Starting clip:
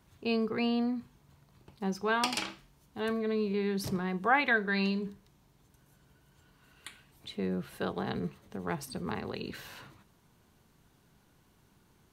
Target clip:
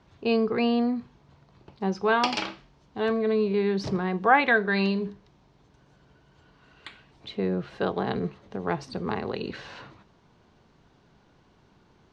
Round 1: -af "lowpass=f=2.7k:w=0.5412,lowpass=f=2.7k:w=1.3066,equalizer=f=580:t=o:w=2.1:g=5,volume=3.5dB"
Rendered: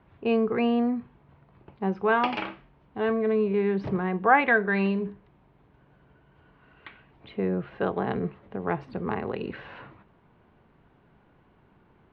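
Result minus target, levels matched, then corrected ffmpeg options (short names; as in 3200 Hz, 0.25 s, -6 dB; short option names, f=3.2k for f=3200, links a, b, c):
4000 Hz band -7.5 dB
-af "lowpass=f=5.6k:w=0.5412,lowpass=f=5.6k:w=1.3066,equalizer=f=580:t=o:w=2.1:g=5,volume=3.5dB"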